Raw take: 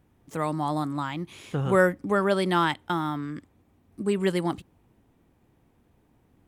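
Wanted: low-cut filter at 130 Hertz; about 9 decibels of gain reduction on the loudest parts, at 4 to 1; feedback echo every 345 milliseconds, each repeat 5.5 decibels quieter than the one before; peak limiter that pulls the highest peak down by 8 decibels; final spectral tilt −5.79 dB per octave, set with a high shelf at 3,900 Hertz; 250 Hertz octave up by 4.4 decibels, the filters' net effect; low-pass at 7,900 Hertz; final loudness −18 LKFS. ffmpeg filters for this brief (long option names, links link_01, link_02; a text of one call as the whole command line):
ffmpeg -i in.wav -af "highpass=130,lowpass=7900,equalizer=frequency=250:width_type=o:gain=7.5,highshelf=frequency=3900:gain=5,acompressor=threshold=-25dB:ratio=4,alimiter=limit=-22dB:level=0:latency=1,aecho=1:1:345|690|1035|1380|1725|2070|2415:0.531|0.281|0.149|0.079|0.0419|0.0222|0.0118,volume=13.5dB" out.wav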